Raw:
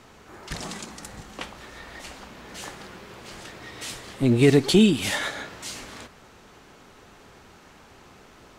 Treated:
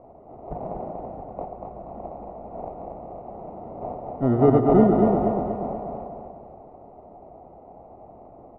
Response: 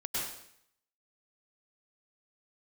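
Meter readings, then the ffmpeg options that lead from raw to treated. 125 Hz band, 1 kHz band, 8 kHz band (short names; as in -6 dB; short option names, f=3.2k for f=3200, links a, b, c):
0.0 dB, +11.0 dB, under -40 dB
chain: -filter_complex "[0:a]acrusher=samples=27:mix=1:aa=0.000001,lowpass=f=710:t=q:w=4.9,aemphasis=mode=reproduction:type=50fm,aecho=1:1:239|478|717|956|1195|1434:0.596|0.292|0.143|0.0701|0.0343|0.0168,asplit=2[a][b];[1:a]atrim=start_sample=2205[c];[b][c]afir=irnorm=-1:irlink=0,volume=-13.5dB[d];[a][d]amix=inputs=2:normalize=0,volume=-4dB"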